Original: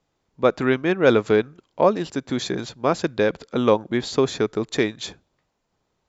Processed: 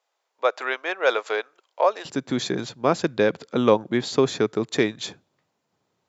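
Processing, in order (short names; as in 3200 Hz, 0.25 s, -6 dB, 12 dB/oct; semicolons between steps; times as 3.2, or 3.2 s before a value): HPF 550 Hz 24 dB/oct, from 2.05 s 100 Hz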